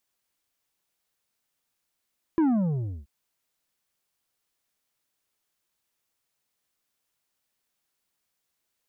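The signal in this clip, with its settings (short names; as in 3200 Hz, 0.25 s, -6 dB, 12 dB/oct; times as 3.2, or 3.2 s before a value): sub drop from 340 Hz, over 0.68 s, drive 7 dB, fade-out 0.68 s, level -19 dB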